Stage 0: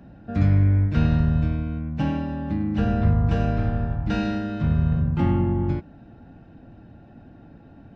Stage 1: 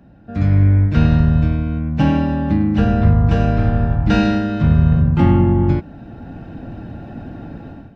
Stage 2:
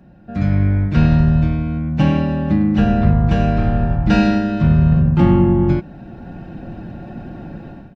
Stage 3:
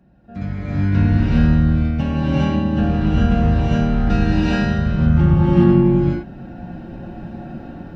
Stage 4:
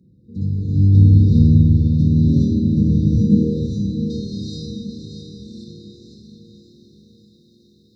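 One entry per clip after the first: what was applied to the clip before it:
AGC gain up to 16 dB; gain -1 dB
comb 5.5 ms, depth 40%
non-linear reverb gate 0.45 s rising, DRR -7.5 dB; gain -8.5 dB
brick-wall FIR band-stop 530–3600 Hz; high-pass sweep 94 Hz -> 2000 Hz, 3.14–3.96; diffused feedback echo 0.607 s, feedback 50%, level -7 dB; gain -1 dB

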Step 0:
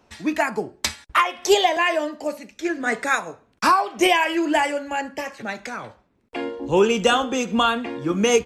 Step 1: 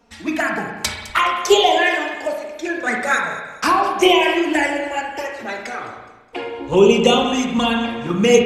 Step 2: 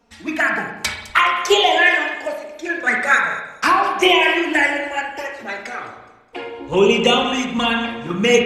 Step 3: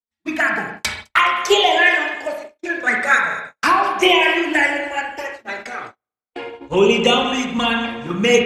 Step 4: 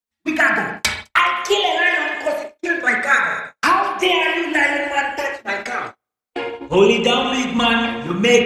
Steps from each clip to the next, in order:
envelope flanger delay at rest 4.3 ms, full sweep at -13.5 dBFS; thin delay 0.209 s, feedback 40%, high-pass 4400 Hz, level -14.5 dB; spring tank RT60 1.2 s, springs 35/58 ms, chirp 30 ms, DRR 1.5 dB; gain +4.5 dB
dynamic EQ 1900 Hz, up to +8 dB, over -32 dBFS, Q 0.82; gain -3 dB
gate -31 dBFS, range -45 dB
vocal rider within 5 dB 0.5 s

